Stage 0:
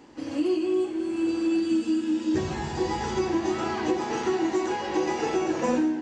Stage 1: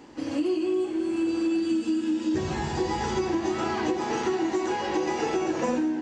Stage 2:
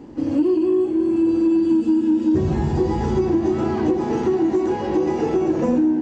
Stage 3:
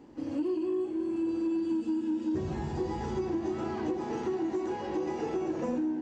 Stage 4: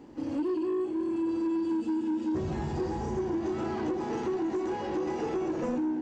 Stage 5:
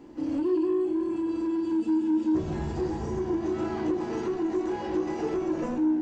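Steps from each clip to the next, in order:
downward compressor 3 to 1, threshold −26 dBFS, peak gain reduction 5 dB; level +2.5 dB
tilt shelving filter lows +9.5 dB, about 660 Hz; in parallel at −5 dB: soft clipping −19.5 dBFS, distortion −14 dB
low-shelf EQ 450 Hz −6.5 dB; level −8.5 dB
healed spectral selection 0:02.82–0:03.32, 850–5,200 Hz; soft clipping −27 dBFS, distortion −19 dB; level +3 dB
convolution reverb RT60 0.20 s, pre-delay 3 ms, DRR 7 dB

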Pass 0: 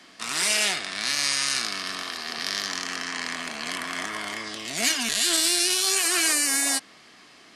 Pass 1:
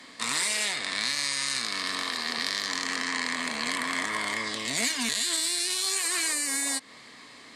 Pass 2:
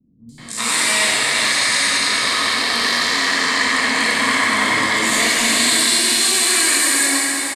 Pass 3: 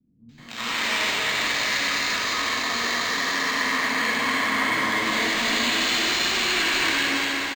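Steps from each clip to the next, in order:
EQ curve with evenly spaced ripples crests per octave 1, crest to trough 7 dB; downward compressor, threshold −26 dBFS, peak gain reduction 9.5 dB; level +2 dB
three-band delay without the direct sound lows, highs, mids 290/380 ms, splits 200/5,600 Hz; dense smooth reverb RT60 4.8 s, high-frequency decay 0.8×, DRR −6 dB; level +7 dB
on a send: loudspeakers that aren't time-aligned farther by 17 metres −11 dB, 87 metres −4 dB; on the sum: linearly interpolated sample-rate reduction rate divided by 4×; level −7 dB

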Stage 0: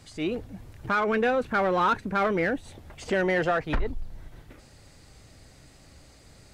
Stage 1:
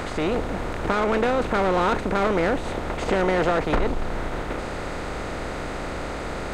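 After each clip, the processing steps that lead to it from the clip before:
compressor on every frequency bin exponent 0.4
dynamic equaliser 1,600 Hz, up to −6 dB, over −35 dBFS, Q 1.2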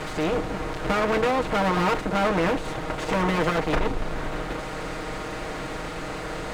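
lower of the sound and its delayed copy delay 6.4 ms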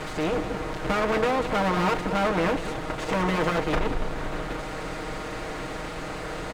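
single-tap delay 189 ms −11.5 dB
level −1.5 dB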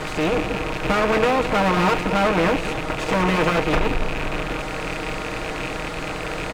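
loose part that buzzes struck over −37 dBFS, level −23 dBFS
level +5 dB

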